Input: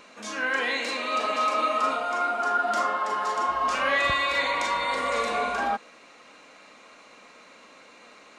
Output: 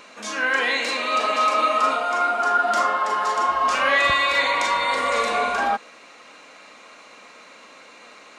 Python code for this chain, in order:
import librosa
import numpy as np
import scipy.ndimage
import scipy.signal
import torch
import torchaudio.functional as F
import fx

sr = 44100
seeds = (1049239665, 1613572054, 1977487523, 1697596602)

y = fx.low_shelf(x, sr, hz=360.0, db=-5.0)
y = y * librosa.db_to_amplitude(5.5)